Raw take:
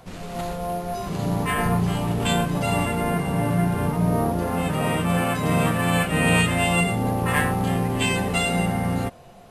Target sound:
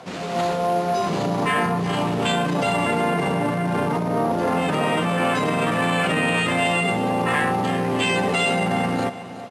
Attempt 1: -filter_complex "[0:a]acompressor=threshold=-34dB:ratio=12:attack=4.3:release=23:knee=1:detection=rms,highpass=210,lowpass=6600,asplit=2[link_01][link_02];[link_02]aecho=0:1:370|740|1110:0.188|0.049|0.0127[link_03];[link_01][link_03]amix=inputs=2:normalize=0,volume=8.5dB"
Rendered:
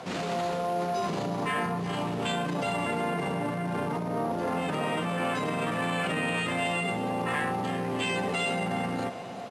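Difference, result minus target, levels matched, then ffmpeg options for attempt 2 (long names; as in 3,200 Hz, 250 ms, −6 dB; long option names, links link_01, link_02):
downward compressor: peak gain reduction +8 dB
-filter_complex "[0:a]acompressor=threshold=-25dB:ratio=12:attack=4.3:release=23:knee=1:detection=rms,highpass=210,lowpass=6600,asplit=2[link_01][link_02];[link_02]aecho=0:1:370|740|1110:0.188|0.049|0.0127[link_03];[link_01][link_03]amix=inputs=2:normalize=0,volume=8.5dB"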